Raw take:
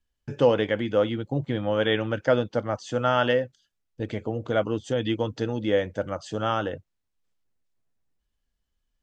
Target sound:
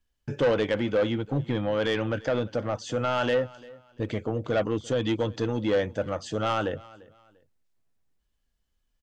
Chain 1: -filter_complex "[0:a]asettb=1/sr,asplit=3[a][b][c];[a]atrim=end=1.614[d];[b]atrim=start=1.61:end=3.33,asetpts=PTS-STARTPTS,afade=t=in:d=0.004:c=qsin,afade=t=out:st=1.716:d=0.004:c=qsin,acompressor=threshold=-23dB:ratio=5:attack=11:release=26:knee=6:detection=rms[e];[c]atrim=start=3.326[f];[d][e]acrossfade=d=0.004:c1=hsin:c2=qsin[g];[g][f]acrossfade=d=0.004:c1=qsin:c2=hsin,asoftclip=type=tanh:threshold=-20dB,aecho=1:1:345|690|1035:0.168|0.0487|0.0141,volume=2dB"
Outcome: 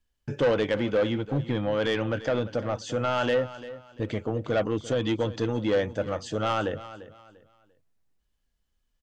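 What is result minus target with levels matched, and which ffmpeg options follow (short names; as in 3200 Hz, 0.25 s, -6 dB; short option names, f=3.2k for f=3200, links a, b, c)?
echo-to-direct +6.5 dB
-filter_complex "[0:a]asettb=1/sr,asplit=3[a][b][c];[a]atrim=end=1.614[d];[b]atrim=start=1.61:end=3.33,asetpts=PTS-STARTPTS,afade=t=in:d=0.004:c=qsin,afade=t=out:st=1.716:d=0.004:c=qsin,acompressor=threshold=-23dB:ratio=5:attack=11:release=26:knee=6:detection=rms[e];[c]atrim=start=3.326[f];[d][e]acrossfade=d=0.004:c1=hsin:c2=qsin[g];[g][f]acrossfade=d=0.004:c1=qsin:c2=hsin,asoftclip=type=tanh:threshold=-20dB,aecho=1:1:345|690:0.0794|0.023,volume=2dB"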